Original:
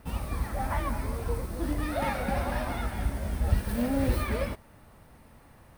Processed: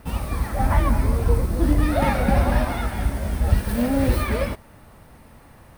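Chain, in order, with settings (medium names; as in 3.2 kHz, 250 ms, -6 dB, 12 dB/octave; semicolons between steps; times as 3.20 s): 0.59–2.65 s: bass shelf 360 Hz +6.5 dB; trim +6.5 dB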